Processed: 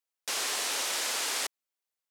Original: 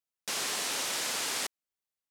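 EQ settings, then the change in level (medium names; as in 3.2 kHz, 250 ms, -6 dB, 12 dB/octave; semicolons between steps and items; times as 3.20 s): high-pass 340 Hz 12 dB/octave; +1.5 dB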